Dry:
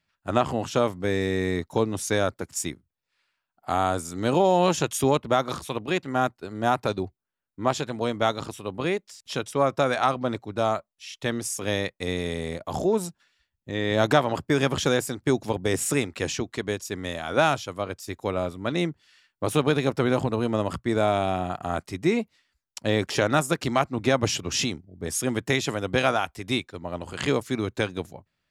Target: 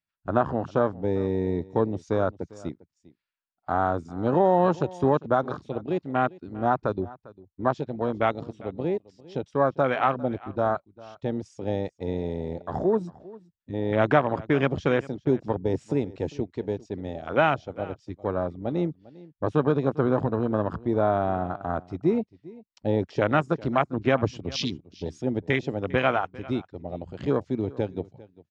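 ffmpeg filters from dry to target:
ffmpeg -i in.wav -filter_complex "[0:a]afwtdn=0.0447,lowpass=frequency=5600:width=0.5412,lowpass=frequency=5600:width=1.3066,asplit=2[link_01][link_02];[link_02]aecho=0:1:400:0.0944[link_03];[link_01][link_03]amix=inputs=2:normalize=0" out.wav

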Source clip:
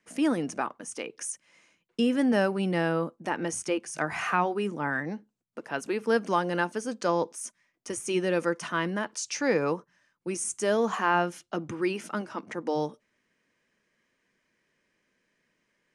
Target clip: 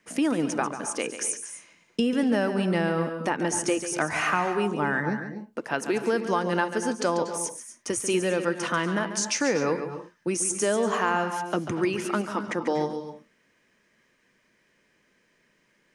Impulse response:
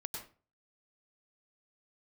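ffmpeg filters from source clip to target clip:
-filter_complex "[0:a]acompressor=threshold=-30dB:ratio=3,asplit=2[link_01][link_02];[1:a]atrim=start_sample=2205,afade=type=out:start_time=0.27:duration=0.01,atrim=end_sample=12348,adelay=141[link_03];[link_02][link_03]afir=irnorm=-1:irlink=0,volume=-7dB[link_04];[link_01][link_04]amix=inputs=2:normalize=0,volume=7dB"

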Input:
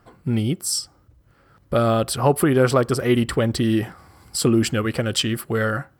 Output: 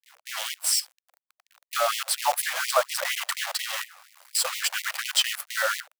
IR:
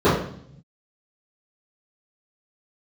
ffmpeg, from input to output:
-af "acrusher=bits=5:dc=4:mix=0:aa=0.000001,afftfilt=real='re*gte(b*sr/1024,500*pow(1900/500,0.5+0.5*sin(2*PI*4.2*pts/sr)))':imag='im*gte(b*sr/1024,500*pow(1900/500,0.5+0.5*sin(2*PI*4.2*pts/sr)))':win_size=1024:overlap=0.75"

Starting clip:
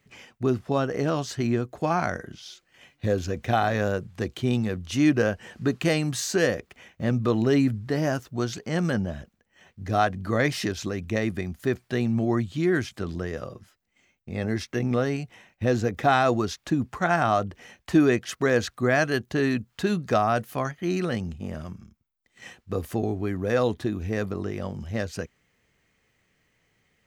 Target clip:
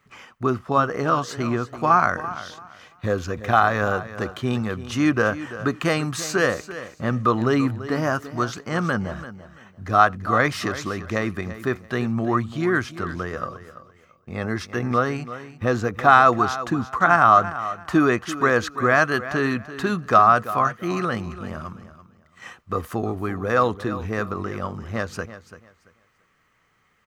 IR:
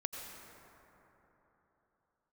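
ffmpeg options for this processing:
-filter_complex "[0:a]equalizer=frequency=1200:width=1.9:gain=15,aecho=1:1:338|676|1014:0.2|0.0459|0.0106,asplit=2[link_01][link_02];[1:a]atrim=start_sample=2205,atrim=end_sample=3969[link_03];[link_02][link_03]afir=irnorm=-1:irlink=0,volume=-13dB[link_04];[link_01][link_04]amix=inputs=2:normalize=0,volume=-1.5dB"

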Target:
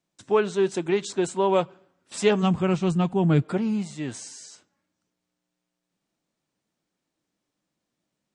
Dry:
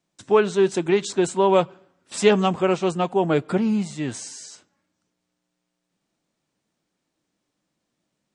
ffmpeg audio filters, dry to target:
ffmpeg -i in.wav -filter_complex "[0:a]asplit=3[link_01][link_02][link_03];[link_01]afade=type=out:start_time=2.42:duration=0.02[link_04];[link_02]asubboost=boost=11:cutoff=190,afade=type=in:start_time=2.42:duration=0.02,afade=type=out:start_time=3.43:duration=0.02[link_05];[link_03]afade=type=in:start_time=3.43:duration=0.02[link_06];[link_04][link_05][link_06]amix=inputs=3:normalize=0,volume=-4dB" out.wav

